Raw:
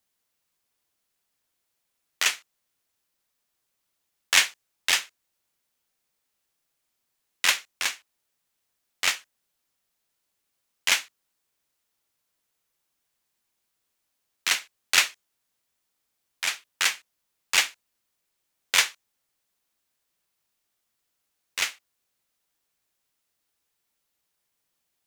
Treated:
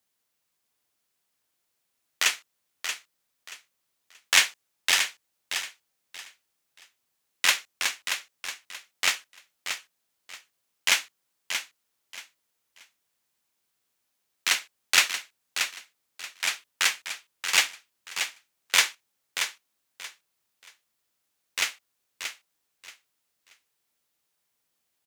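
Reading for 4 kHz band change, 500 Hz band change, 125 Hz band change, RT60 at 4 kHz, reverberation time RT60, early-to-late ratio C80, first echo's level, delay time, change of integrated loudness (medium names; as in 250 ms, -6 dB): +0.5 dB, +0.5 dB, no reading, no reverb, no reverb, no reverb, -8.0 dB, 630 ms, -2.0 dB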